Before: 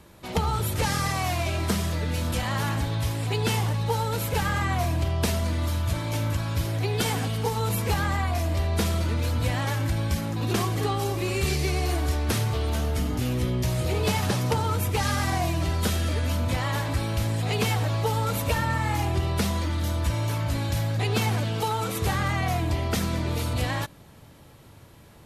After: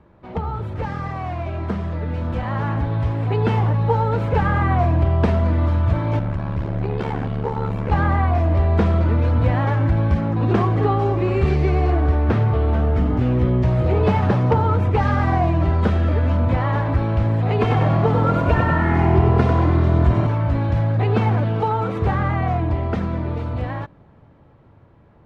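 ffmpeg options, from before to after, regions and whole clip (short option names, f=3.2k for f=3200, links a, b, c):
-filter_complex "[0:a]asettb=1/sr,asplit=3[a][b][c];[a]atrim=end=6.194[d];[b]atrim=start=6.19:end=7.92,asetpts=PTS-STARTPTS,afade=t=in:d=0.004:c=qsin,afade=t=out:st=1.726:d=0.004:c=qsin,tremolo=f=72:d=0.919,asoftclip=type=hard:threshold=-24.5dB[e];[c]atrim=start=7.916[f];[d][e]acrossfade=d=0.004:c1=hsin:c2=qsin[g];[g][f]acrossfade=d=0.004:c1=qsin:c2=hsin,asettb=1/sr,asplit=3[h][i][j];[h]atrim=end=11.904[k];[i]atrim=start=11.9:end=12.97,asetpts=PTS-STARTPTS,afade=t=in:d=0.004:c=qsin,afade=t=out:st=1.066:d=0.004:c=qsin,highshelf=f=6.5k:g=-10,bandreject=f=960:w=21[l];[j]atrim=start=12.966[m];[k][l]acrossfade=d=0.004:c1=hsin:c2=qsin[n];[n][m]acrossfade=d=0.004:c1=qsin:c2=hsin,asettb=1/sr,asplit=3[o][p][q];[o]atrim=end=17.594[r];[p]atrim=start=17.59:end=20.27,asetpts=PTS-STARTPTS,afade=t=in:d=0.004:c=qsin,afade=t=out:st=2.676:d=0.004:c=qsin,aecho=1:1:2.9:0.57,atrim=end_sample=118188,asplit=8[s][t][u][v][w][x][y][z];[t]adelay=96,afreqshift=42,volume=-5dB[aa];[u]adelay=192,afreqshift=84,volume=-10dB[ab];[v]adelay=288,afreqshift=126,volume=-15.1dB[ac];[w]adelay=384,afreqshift=168,volume=-20.1dB[ad];[x]adelay=480,afreqshift=210,volume=-25.1dB[ae];[y]adelay=576,afreqshift=252,volume=-30.2dB[af];[z]adelay=672,afreqshift=294,volume=-35.2dB[ag];[s][aa][ab][ac][ad][ae][af][ag]amix=inputs=8:normalize=0,atrim=end_sample=118188[ah];[q]atrim=start=20.266[ai];[r][ah]acrossfade=d=0.004:c1=hsin:c2=qsin[aj];[aj][ai]acrossfade=d=0.004:c1=qsin:c2=hsin,lowpass=1.4k,dynaudnorm=f=320:g=17:m=8.5dB"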